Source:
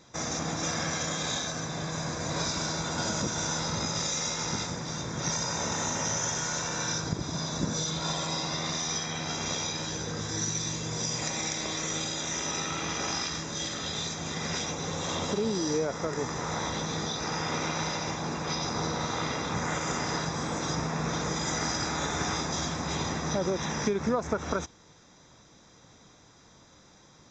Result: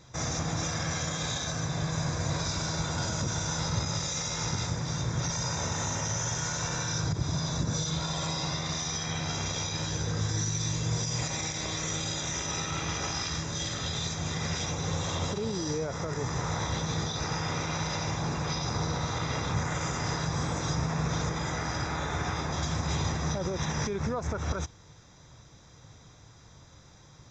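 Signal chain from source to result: 21.29–22.63 tone controls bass -3 dB, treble -9 dB; limiter -23 dBFS, peak gain reduction 9 dB; resonant low shelf 160 Hz +8 dB, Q 1.5

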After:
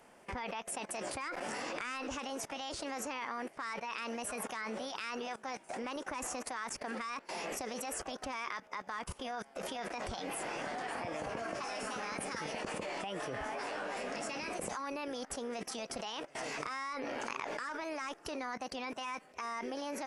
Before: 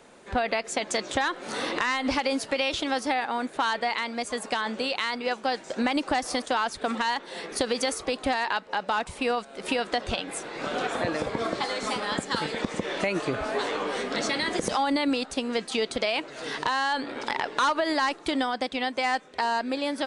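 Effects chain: level quantiser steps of 21 dB; formant shift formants +4 st; bell 4000 Hz -9.5 dB 0.48 oct; gain +3 dB

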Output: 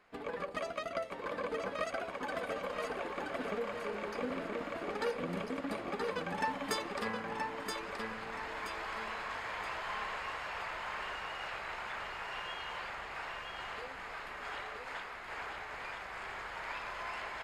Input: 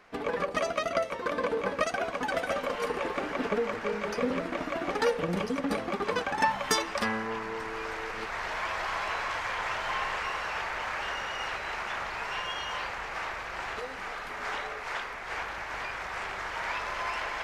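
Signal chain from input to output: notch 5800 Hz, Q 6.3; feedback echo 0.975 s, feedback 38%, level -4 dB; gain -9 dB

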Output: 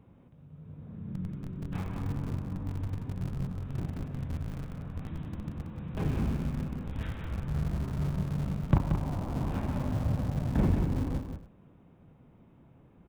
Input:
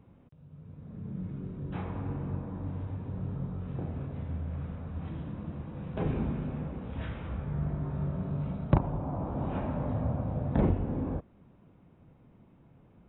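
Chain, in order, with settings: dynamic EQ 560 Hz, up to -7 dB, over -51 dBFS, Q 0.87; in parallel at -5.5 dB: Schmitt trigger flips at -31 dBFS; on the sum: tapped delay 93/181/282 ms -19/-6.5/-18.5 dB

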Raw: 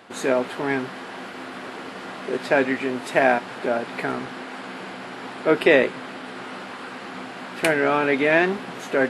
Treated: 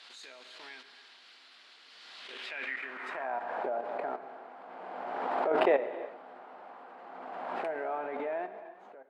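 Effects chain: ending faded out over 1.20 s; HPF 150 Hz 24 dB/oct; level quantiser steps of 14 dB; band-pass sweep 4200 Hz -> 730 Hz, 2.16–3.5; non-linear reverb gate 0.36 s flat, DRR 10 dB; backwards sustainer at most 25 dB/s; gain -1.5 dB

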